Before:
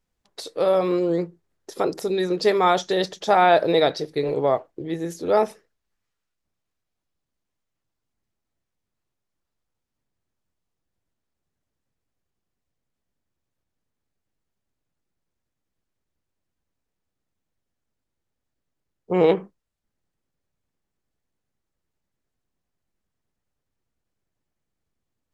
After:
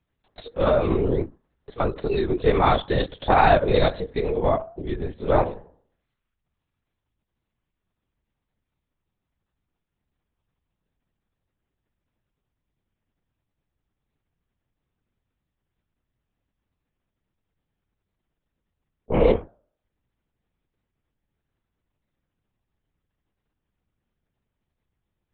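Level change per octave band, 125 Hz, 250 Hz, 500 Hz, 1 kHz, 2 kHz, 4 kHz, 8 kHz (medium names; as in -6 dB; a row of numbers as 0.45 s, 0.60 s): +7.0 dB, -1.0 dB, -1.5 dB, -0.5 dB, 0.0 dB, -4.0 dB, no reading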